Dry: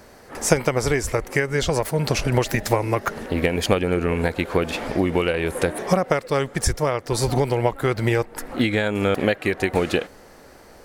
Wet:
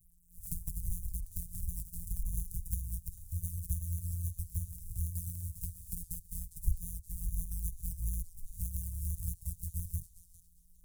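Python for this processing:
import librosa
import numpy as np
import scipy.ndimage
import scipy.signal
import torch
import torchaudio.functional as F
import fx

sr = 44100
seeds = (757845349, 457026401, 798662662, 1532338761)

p1 = np.r_[np.sort(x[:len(x) // 256 * 256].reshape(-1, 256), axis=1).ravel(), x[len(x) // 256 * 256:]]
p2 = scipy.signal.sosfilt(scipy.signal.cheby2(4, 80, [440.0, 2200.0], 'bandstop', fs=sr, output='sos'), p1)
p3 = fx.env_flanger(p2, sr, rest_ms=6.8, full_db=-28.0)
p4 = p3 + fx.echo_banded(p3, sr, ms=405, feedback_pct=53, hz=2500.0, wet_db=-4.5, dry=0)
y = F.gain(torch.from_numpy(p4), -3.5).numpy()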